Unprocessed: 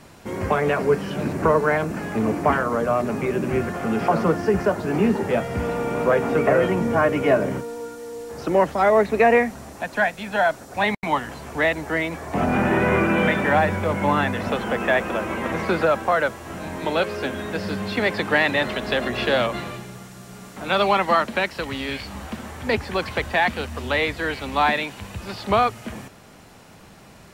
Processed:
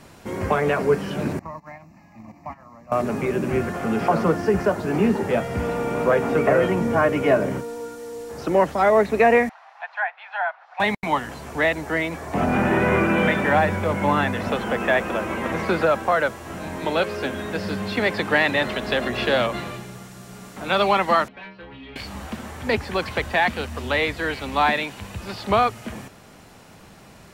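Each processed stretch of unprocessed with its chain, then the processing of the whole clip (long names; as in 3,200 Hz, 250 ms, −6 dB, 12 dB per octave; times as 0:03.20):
0:01.39–0:02.92: noise gate −19 dBFS, range −18 dB + downward compressor 2.5 to 1, threshold −33 dBFS + phaser with its sweep stopped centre 2,200 Hz, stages 8
0:09.49–0:10.80: elliptic high-pass filter 770 Hz, stop band 70 dB + treble cut that deepens with the level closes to 2,400 Hz, closed at −22.5 dBFS + high-frequency loss of the air 320 metres
0:21.28–0:21.96: stiff-string resonator 62 Hz, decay 0.78 s, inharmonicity 0.008 + gain into a clipping stage and back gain 35.5 dB + low-pass filter 3,400 Hz 24 dB per octave
whole clip: no processing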